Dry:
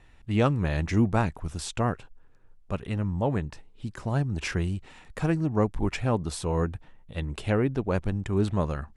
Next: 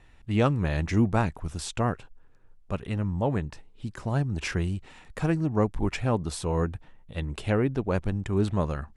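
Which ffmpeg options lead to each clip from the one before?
-af anull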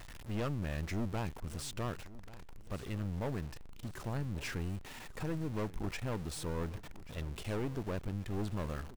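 -af "aeval=exprs='val(0)+0.5*0.0266*sgn(val(0))':c=same,aeval=exprs='(tanh(15.8*val(0)+0.7)-tanh(0.7))/15.8':c=same,aecho=1:1:1137|2274|3411:0.126|0.0428|0.0146,volume=0.398"

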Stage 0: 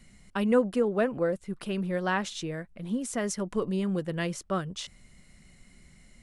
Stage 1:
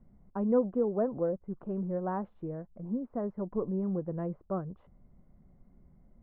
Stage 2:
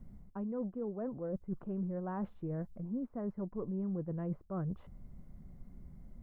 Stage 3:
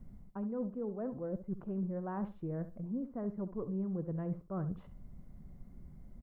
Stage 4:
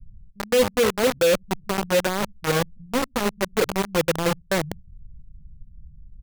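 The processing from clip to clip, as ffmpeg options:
-af "lowpass=f=1000:w=0.5412,lowpass=f=1000:w=1.3066,volume=0.708"
-af "areverse,acompressor=threshold=0.01:ratio=6,areverse,equalizer=f=630:w=0.42:g=-7.5,volume=2.82"
-af "aecho=1:1:68|136:0.224|0.0448"
-filter_complex "[0:a]lowpass=f=530:t=q:w=4.9,acrossover=split=130[s0][s1];[s1]acrusher=bits=4:mix=0:aa=0.000001[s2];[s0][s2]amix=inputs=2:normalize=0,volume=2.82"

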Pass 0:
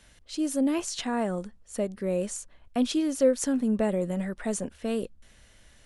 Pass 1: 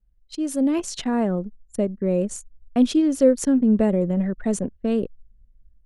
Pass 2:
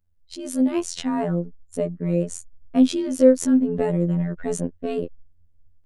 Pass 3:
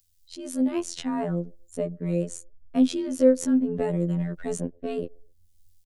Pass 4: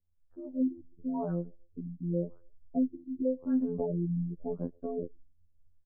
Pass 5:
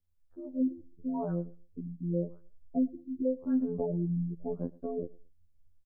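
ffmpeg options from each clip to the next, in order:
-filter_complex "[0:a]anlmdn=1,acrossover=split=470|1600[s0][s1][s2];[s0]dynaudnorm=f=480:g=3:m=2.24[s3];[s3][s1][s2]amix=inputs=3:normalize=0,volume=1.19"
-af "afftfilt=real='hypot(re,im)*cos(PI*b)':imag='0':win_size=2048:overlap=0.75,volume=1.41"
-filter_complex "[0:a]acrossover=split=380|640|3400[s0][s1][s2][s3];[s1]aecho=1:1:128|256:0.0668|0.0247[s4];[s3]acompressor=mode=upward:threshold=0.00631:ratio=2.5[s5];[s0][s4][s2][s5]amix=inputs=4:normalize=0,volume=0.631"
-af "alimiter=limit=0.188:level=0:latency=1:release=398,lowpass=f=2500:p=1,afftfilt=real='re*lt(b*sr/1024,300*pow(1900/300,0.5+0.5*sin(2*PI*0.9*pts/sr)))':imag='im*lt(b*sr/1024,300*pow(1900/300,0.5+0.5*sin(2*PI*0.9*pts/sr)))':win_size=1024:overlap=0.75,volume=0.562"
-af "aecho=1:1:111|222:0.0708|0.0142"

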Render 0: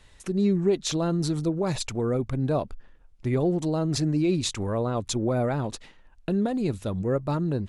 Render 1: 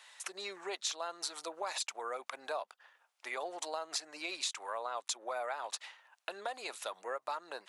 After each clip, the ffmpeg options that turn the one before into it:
-af "highpass=f=750:w=0.5412,highpass=f=750:w=1.3066,acompressor=threshold=0.0112:ratio=4,volume=1.5"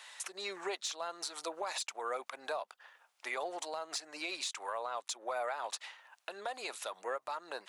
-af "asoftclip=type=tanh:threshold=0.0708,alimiter=level_in=2.66:limit=0.0631:level=0:latency=1:release=373,volume=0.376,volume=1.78"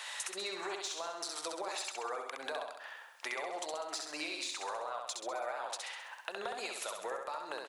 -af "acompressor=threshold=0.00447:ratio=6,aecho=1:1:66|132|198|264|330|396|462:0.631|0.341|0.184|0.0994|0.0537|0.029|0.0156,volume=2.66"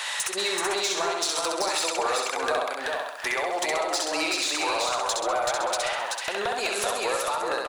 -af "aeval=exprs='0.1*sin(PI/2*2.82*val(0)/0.1)':c=same,aecho=1:1:381:0.708"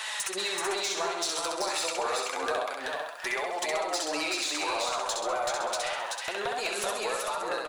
-af "flanger=delay=4.6:depth=9.2:regen=48:speed=0.28:shape=sinusoidal"

